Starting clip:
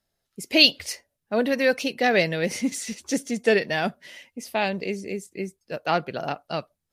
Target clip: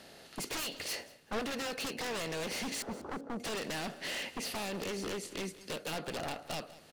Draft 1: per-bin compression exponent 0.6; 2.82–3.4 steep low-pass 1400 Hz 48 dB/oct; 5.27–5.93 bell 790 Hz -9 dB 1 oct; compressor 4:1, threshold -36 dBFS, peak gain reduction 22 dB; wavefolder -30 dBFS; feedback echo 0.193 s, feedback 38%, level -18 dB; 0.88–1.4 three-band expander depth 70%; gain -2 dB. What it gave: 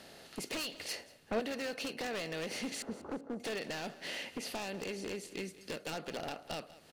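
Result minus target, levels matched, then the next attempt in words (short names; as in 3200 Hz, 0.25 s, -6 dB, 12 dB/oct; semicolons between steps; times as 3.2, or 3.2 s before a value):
compressor: peak gain reduction +4.5 dB
per-bin compression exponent 0.6; 2.82–3.4 steep low-pass 1400 Hz 48 dB/oct; 5.27–5.93 bell 790 Hz -9 dB 1 oct; compressor 4:1, threshold -30 dBFS, peak gain reduction 17.5 dB; wavefolder -30 dBFS; feedback echo 0.193 s, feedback 38%, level -18 dB; 0.88–1.4 three-band expander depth 70%; gain -2 dB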